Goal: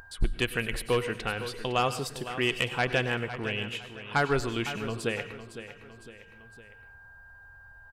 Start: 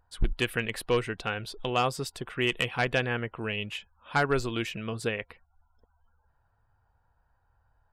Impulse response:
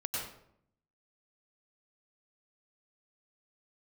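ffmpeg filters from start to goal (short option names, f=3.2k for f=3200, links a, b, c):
-filter_complex "[0:a]aeval=exprs='val(0)+0.000891*sin(2*PI*1600*n/s)':c=same,aecho=1:1:508|1016|1524:0.251|0.0829|0.0274,asplit=2[a][b];[1:a]atrim=start_sample=2205,highshelf=f=3.9k:g=8.5[c];[b][c]afir=irnorm=-1:irlink=0,volume=-15dB[d];[a][d]amix=inputs=2:normalize=0,acompressor=mode=upward:threshold=-39dB:ratio=2.5,volume=-1.5dB"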